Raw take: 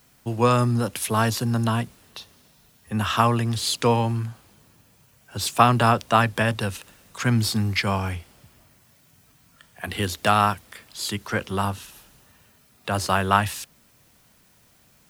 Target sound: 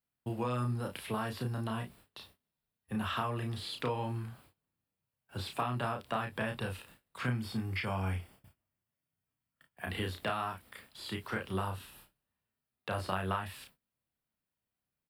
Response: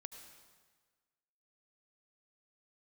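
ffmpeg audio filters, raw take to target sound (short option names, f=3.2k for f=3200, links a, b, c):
-filter_complex "[0:a]acompressor=threshold=-24dB:ratio=6,asettb=1/sr,asplit=3[a][b][c];[a]atrim=end=7.264[d];[b]atrim=start=7.26:end=9.9,asetpts=PTS-STARTPTS,afade=t=in:d=0.004:c=qsin,afade=t=out:st=2.636:d=0.004:c=qsin,bandreject=f=4k:w=7[e];[c]atrim=start=9.896[f];[d][e]acrossfade=d=0.004:c1=hsin:c2=qsin[g];[g][f]acrossfade=d=0.004:c1=qsin:c2=hsin,acrossover=split=4300[h][i];[i]acompressor=threshold=-42dB:ratio=4:attack=1:release=60[j];[h][j]amix=inputs=2:normalize=0,equalizer=f=6.3k:t=o:w=0.47:g=-13.5,agate=range=-25dB:threshold=-50dB:ratio=16:detection=peak,aecho=1:1:32|54:0.631|0.133,volume=-8dB"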